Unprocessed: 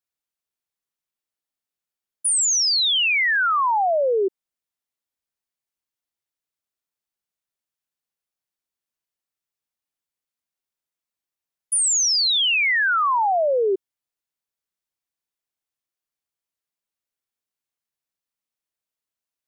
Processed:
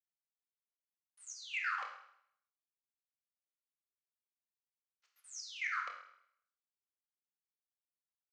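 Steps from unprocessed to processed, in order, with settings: level-controlled noise filter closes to 810 Hz, open at -19.5 dBFS; spectral gate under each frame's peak -30 dB weak; gate with hold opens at -56 dBFS; tilt shelf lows +6.5 dB, about 780 Hz; waveshaping leveller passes 3; trance gate "xxx....x.xx" 121 bpm -12 dB; cabinet simulation 480–3000 Hz, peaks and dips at 580 Hz +9 dB, 870 Hz +6 dB, 1.2 kHz +4 dB, 1.9 kHz +6 dB, 2.7 kHz +4 dB; reverberation RT60 1.6 s, pre-delay 50 ms, DRR 2 dB; speed mistake 33 rpm record played at 78 rpm; trim +8.5 dB

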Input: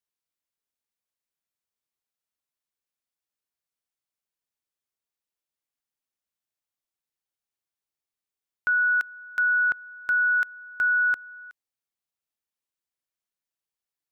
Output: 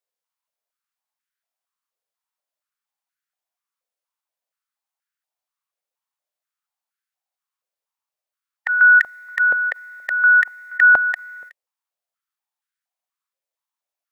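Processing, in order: formant shift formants +4 st; step-sequenced high-pass 4.2 Hz 530–1500 Hz

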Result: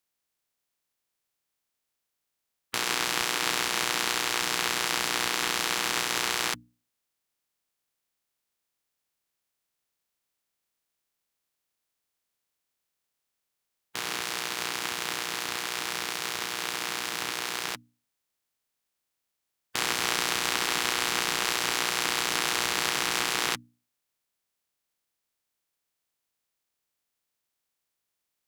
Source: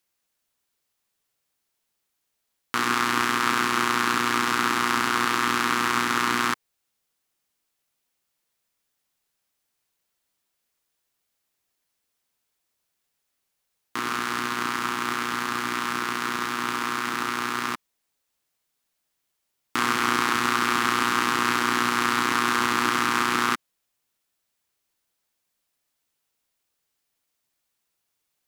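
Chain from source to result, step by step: spectral peaks clipped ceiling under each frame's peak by 19 dB; hum notches 60/120/180/240/300 Hz; trim -4.5 dB

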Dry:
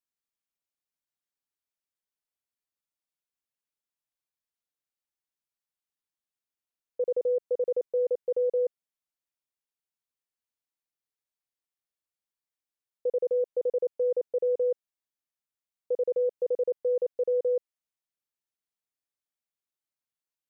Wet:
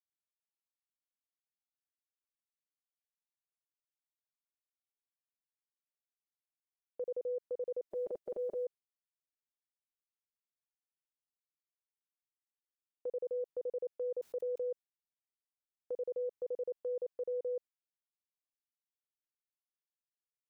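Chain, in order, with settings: 7.86–8.64 s: spectral peaks clipped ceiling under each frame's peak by 24 dB; gate with hold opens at -34 dBFS; peak limiter -28 dBFS, peak gain reduction 10 dB; 14.22–14.69 s: level flattener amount 50%; trim -4.5 dB

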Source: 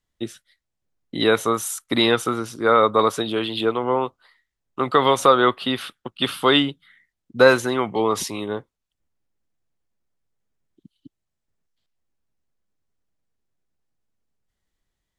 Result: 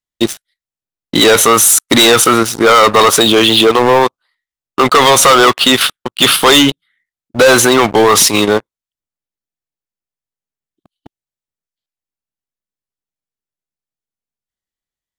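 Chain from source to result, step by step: tilt EQ +1.5 dB/octave; waveshaping leveller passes 5; in parallel at +2 dB: level held to a coarse grid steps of 14 dB; on the sum: trim -4.5 dB

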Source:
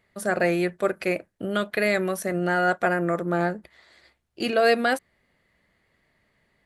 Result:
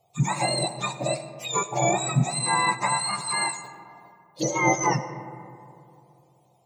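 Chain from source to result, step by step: spectrum inverted on a logarithmic axis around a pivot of 1.2 kHz; touch-sensitive phaser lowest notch 270 Hz, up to 3.1 kHz, full sweep at -29 dBFS; reverberation RT60 2.7 s, pre-delay 45 ms, DRR 11 dB; trim +4.5 dB

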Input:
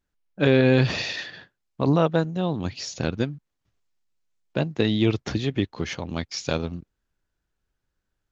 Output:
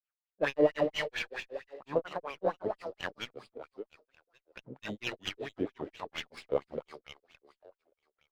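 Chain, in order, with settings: on a send: two-band feedback delay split 310 Hz, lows 109 ms, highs 283 ms, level -5 dB; on the sum: granulator 169 ms, grains 5.4 per s, spray 17 ms, pitch spread up and down by 3 st; in parallel at -3 dB: crossover distortion -45 dBFS; on the sum: resampled via 11.025 kHz; wah-wah 4.4 Hz 440–2900 Hz, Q 4; sliding maximum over 3 samples

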